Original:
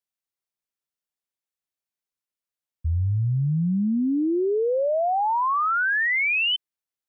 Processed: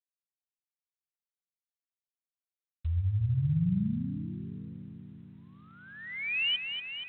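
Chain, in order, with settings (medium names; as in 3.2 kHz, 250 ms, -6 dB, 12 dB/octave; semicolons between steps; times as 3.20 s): Chebyshev band-stop 190–2700 Hz, order 3; on a send: echo whose repeats swap between lows and highs 119 ms, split 1.3 kHz, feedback 84%, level -6.5 dB; on the sum: trim -5.5 dB; G.726 24 kbps 8 kHz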